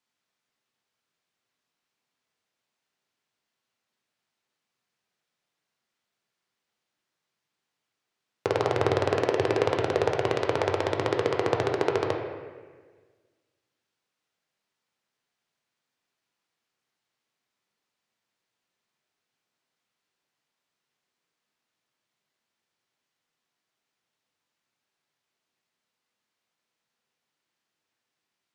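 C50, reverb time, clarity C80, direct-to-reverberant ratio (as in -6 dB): 4.5 dB, 1.5 s, 6.0 dB, 1.5 dB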